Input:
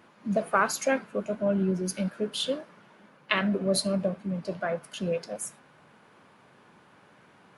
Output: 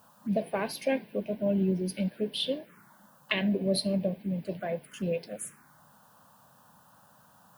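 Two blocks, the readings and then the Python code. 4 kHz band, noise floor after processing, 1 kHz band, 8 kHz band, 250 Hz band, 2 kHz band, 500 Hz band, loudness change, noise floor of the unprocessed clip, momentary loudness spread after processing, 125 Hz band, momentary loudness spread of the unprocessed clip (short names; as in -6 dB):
-1.0 dB, -60 dBFS, -9.0 dB, -7.0 dB, -0.5 dB, -6.0 dB, -2.0 dB, -2.0 dB, -58 dBFS, 8 LU, -0.5 dB, 8 LU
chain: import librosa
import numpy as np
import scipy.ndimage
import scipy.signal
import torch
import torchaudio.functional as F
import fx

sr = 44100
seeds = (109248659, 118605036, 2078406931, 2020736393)

y = fx.dmg_noise_colour(x, sr, seeds[0], colour='blue', level_db=-65.0)
y = fx.env_phaser(y, sr, low_hz=350.0, high_hz=1300.0, full_db=-28.5)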